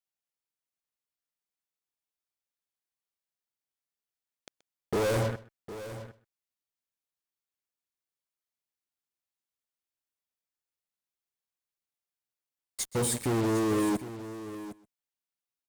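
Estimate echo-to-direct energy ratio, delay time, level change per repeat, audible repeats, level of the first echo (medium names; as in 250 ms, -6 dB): -12.5 dB, 128 ms, no regular repeats, 3, -20.0 dB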